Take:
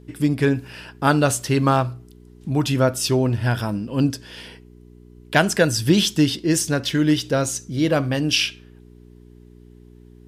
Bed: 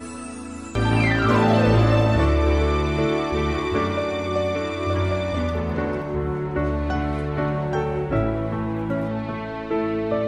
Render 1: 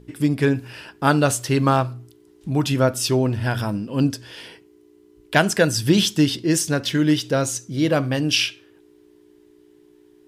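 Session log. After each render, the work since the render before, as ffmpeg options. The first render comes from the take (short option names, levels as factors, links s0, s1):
-af "bandreject=f=60:t=h:w=4,bandreject=f=120:t=h:w=4,bandreject=f=180:t=h:w=4,bandreject=f=240:t=h:w=4"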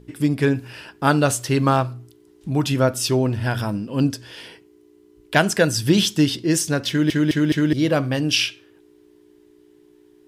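-filter_complex "[0:a]asplit=5[s0][s1][s2][s3][s4];[s0]atrim=end=7.102[s5];[s1]atrim=start=6.888:end=7.102[s6];[s2]atrim=start=6.888:end=7.102[s7];[s3]atrim=start=6.888:end=7.102[s8];[s4]atrim=start=7.728[s9];[s5][s6]acrossfade=d=0.004:c1=hsin:c2=hsin[s10];[s10][s7]acrossfade=d=0.004:c1=hsin:c2=hsin[s11];[s11][s8]acrossfade=d=0.004:c1=hsin:c2=hsin[s12];[s12][s9]acrossfade=d=0.004:c1=hsin:c2=hsin"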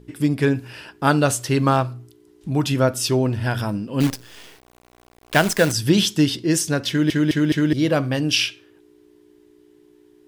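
-filter_complex "[0:a]asettb=1/sr,asplit=3[s0][s1][s2];[s0]atrim=end=4.004[s3];[s1]atrim=start=4:end=5.72,asetpts=PTS-STARTPTS,afade=t=in:d=0.004:c=qsin,afade=t=out:st=1.716:d=0.004:c=qsin,acrusher=bits=5:dc=4:mix=0:aa=0.000001[s4];[s2]atrim=start=5.716[s5];[s3][s4]acrossfade=d=0.004:c1=hsin:c2=qsin[s6];[s6][s5]acrossfade=d=0.004:c1=qsin:c2=hsin"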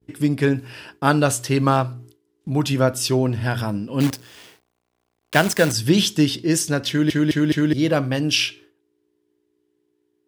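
-af "highpass=f=63:w=0.5412,highpass=f=63:w=1.3066,agate=range=0.0224:threshold=0.00891:ratio=3:detection=peak"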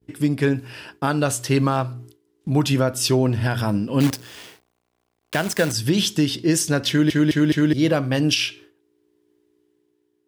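-af "dynaudnorm=f=150:g=11:m=2.24,alimiter=limit=0.376:level=0:latency=1:release=267"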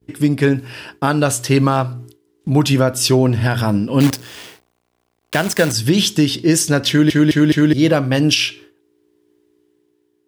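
-af "volume=1.78"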